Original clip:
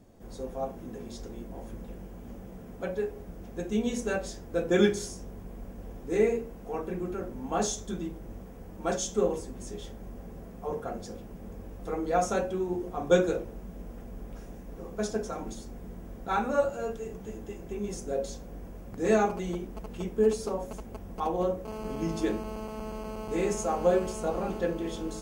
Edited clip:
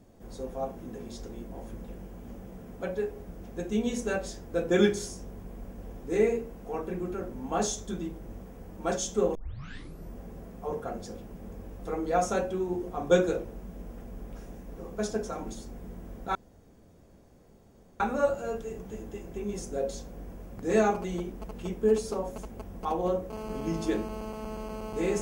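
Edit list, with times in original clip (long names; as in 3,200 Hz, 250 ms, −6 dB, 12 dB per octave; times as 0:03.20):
0:09.35: tape start 0.78 s
0:16.35: splice in room tone 1.65 s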